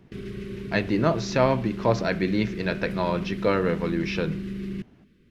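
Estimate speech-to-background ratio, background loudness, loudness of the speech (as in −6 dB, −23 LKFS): 8.5 dB, −34.0 LKFS, −25.5 LKFS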